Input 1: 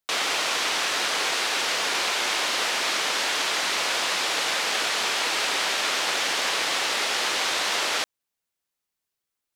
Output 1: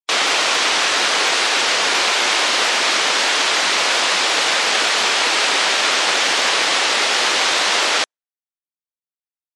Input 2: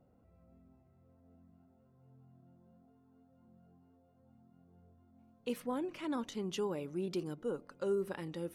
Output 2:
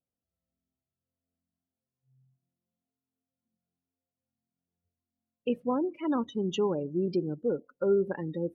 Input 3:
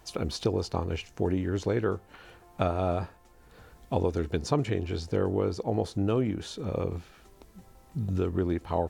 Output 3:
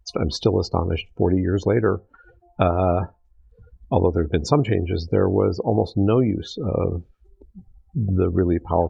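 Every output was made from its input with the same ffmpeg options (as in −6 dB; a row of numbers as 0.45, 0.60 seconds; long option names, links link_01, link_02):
-af "afftdn=noise_reduction=35:noise_floor=-41,volume=8.5dB"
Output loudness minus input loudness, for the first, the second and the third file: +8.5, +8.0, +8.5 LU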